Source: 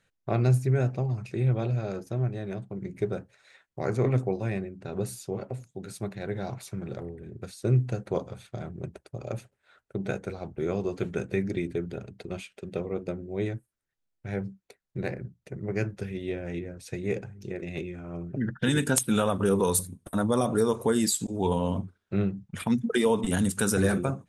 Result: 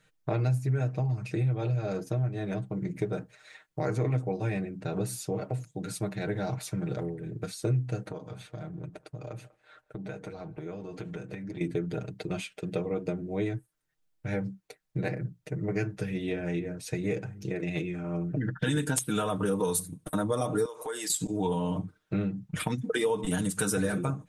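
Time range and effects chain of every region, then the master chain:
8.11–11.61 s: treble shelf 6.7 kHz -7 dB + compression 4:1, threshold -41 dBFS + band-passed feedback delay 195 ms, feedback 46%, band-pass 1 kHz, level -19.5 dB
20.65–21.10 s: high-pass 580 Hz + compression 12:1, threshold -35 dBFS
whole clip: comb 6.5 ms, depth 79%; compression 3:1, threshold -30 dBFS; trim +2.5 dB

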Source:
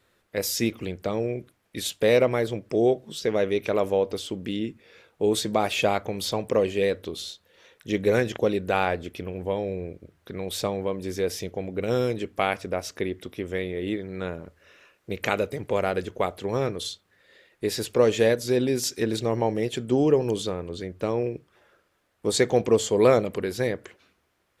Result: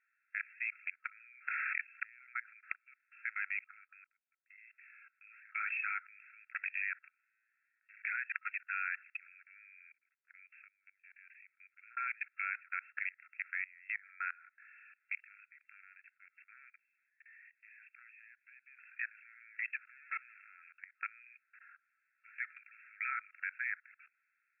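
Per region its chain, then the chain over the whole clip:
1.09–2.88 s: peaking EQ 540 Hz +9.5 dB 1.3 oct + inverted gate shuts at -17 dBFS, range -35 dB + level flattener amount 100%
3.64–4.58 s: gate -28 dBFS, range -21 dB + level held to a coarse grid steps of 13 dB + Gaussian low-pass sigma 3.4 samples
7.08–7.97 s: self-modulated delay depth 0.32 ms + low-pass 1.8 kHz + feedback comb 110 Hz, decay 1.1 s, mix 80%
9.92–11.97 s: compression 16:1, threshold -27 dBFS + differentiator
15.21–18.79 s: peaking EQ 1.3 kHz -11 dB 0.47 oct + transient shaper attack -9 dB, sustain -1 dB + compression 16:1, threshold -36 dBFS
19.82–20.57 s: dead-time distortion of 0.17 ms + treble shelf 5.9 kHz -5.5 dB
whole clip: FFT band-pass 1.3–2.7 kHz; level held to a coarse grid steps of 22 dB; trim +7 dB

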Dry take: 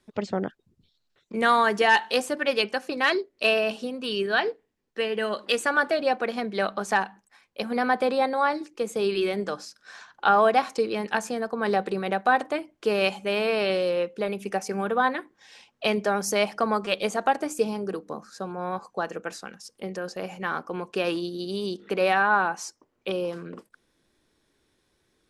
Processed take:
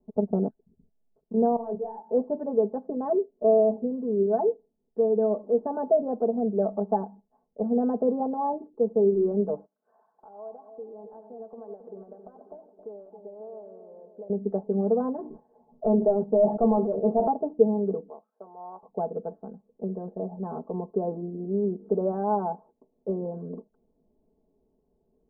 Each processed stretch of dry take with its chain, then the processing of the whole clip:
1.56–2.09 s: level held to a coarse grid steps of 15 dB + hard clipper -24 dBFS + detune thickener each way 58 cents
9.66–14.30 s: high-pass 1.4 kHz 6 dB/octave + compression 5:1, threshold -40 dBFS + two-band feedback delay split 800 Hz, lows 270 ms, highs 92 ms, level -9 dB
15.18–17.27 s: doubling 13 ms -6 dB + hard clipper -18 dBFS + decay stretcher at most 85 dB/s
18.09–18.83 s: companding laws mixed up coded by A + high-pass 780 Hz
whole clip: steep low-pass 770 Hz 36 dB/octave; comb 4.6 ms, depth 90%

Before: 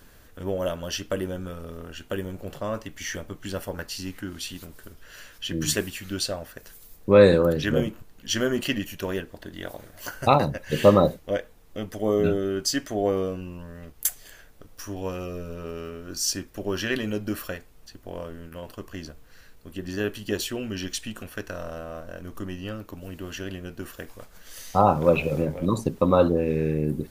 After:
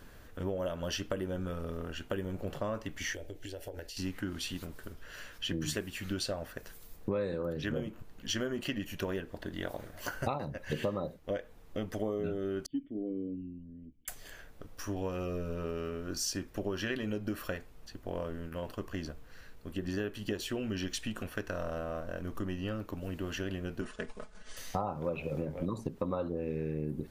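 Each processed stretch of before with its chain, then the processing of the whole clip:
3.13–3.97 s: static phaser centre 470 Hz, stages 4 + compression 12:1, threshold -37 dBFS
12.66–14.08 s: resonances exaggerated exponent 1.5 + cascade formant filter i + hum notches 50/100 Hz
23.81–24.57 s: companding laws mixed up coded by A + brick-wall FIR low-pass 10 kHz + comb 4.7 ms, depth 87%
whole clip: treble shelf 4.1 kHz -7.5 dB; compression 8:1, threshold -31 dBFS

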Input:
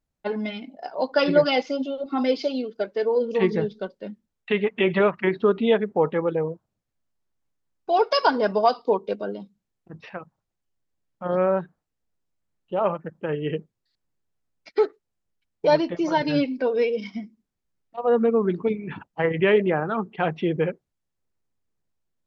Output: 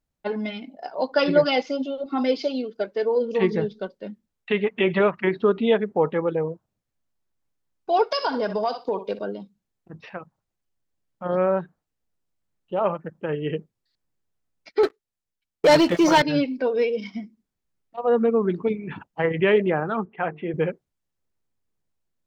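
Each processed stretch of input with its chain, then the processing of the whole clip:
8.09–9.19 s: treble shelf 4.5 kHz +4.5 dB + flutter echo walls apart 10.7 m, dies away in 0.24 s + compression 3:1, threshold -21 dBFS
14.83–16.22 s: tilt shelf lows -3.5 dB, about 1.4 kHz + waveshaping leveller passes 3
20.05–20.54 s: low-pass 2.3 kHz 24 dB/octave + bass shelf 410 Hz -7.5 dB + hum notches 50/100/150/200/250/300/350/400/450 Hz
whole clip: none

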